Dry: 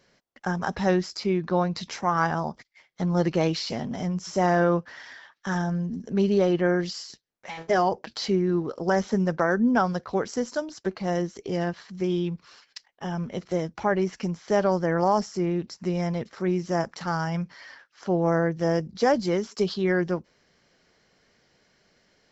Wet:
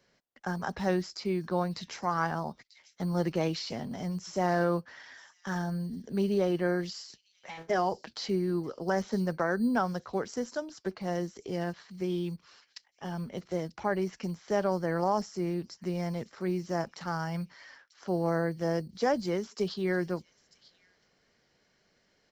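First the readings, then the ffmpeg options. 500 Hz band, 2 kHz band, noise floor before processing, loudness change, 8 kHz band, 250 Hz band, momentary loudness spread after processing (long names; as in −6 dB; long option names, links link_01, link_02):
−6.0 dB, −6.0 dB, −66 dBFS, −6.0 dB, can't be measured, −6.0 dB, 11 LU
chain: -filter_complex "[0:a]acrossover=split=200|2600[link_01][link_02][link_03];[link_01]acrusher=samples=10:mix=1:aa=0.000001[link_04];[link_03]aecho=1:1:942:0.158[link_05];[link_04][link_02][link_05]amix=inputs=3:normalize=0,volume=-6dB"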